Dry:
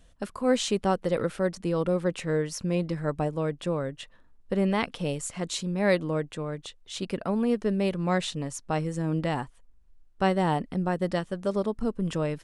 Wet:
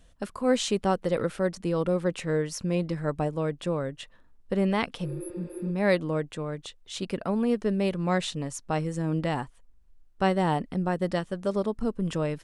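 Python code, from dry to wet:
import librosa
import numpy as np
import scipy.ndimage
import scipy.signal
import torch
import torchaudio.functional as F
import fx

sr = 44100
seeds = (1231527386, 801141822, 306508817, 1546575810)

y = fx.spec_repair(x, sr, seeds[0], start_s=5.07, length_s=0.61, low_hz=260.0, high_hz=9900.0, source='after')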